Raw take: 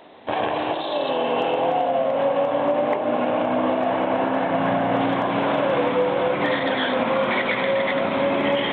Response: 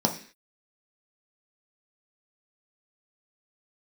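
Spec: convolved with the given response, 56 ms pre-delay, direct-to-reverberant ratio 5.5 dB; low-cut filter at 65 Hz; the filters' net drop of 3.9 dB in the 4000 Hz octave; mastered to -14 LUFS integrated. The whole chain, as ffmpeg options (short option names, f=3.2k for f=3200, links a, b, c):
-filter_complex "[0:a]highpass=65,equalizer=f=4k:t=o:g=-5.5,asplit=2[a][b];[1:a]atrim=start_sample=2205,adelay=56[c];[b][c]afir=irnorm=-1:irlink=0,volume=-17dB[d];[a][d]amix=inputs=2:normalize=0,volume=5.5dB"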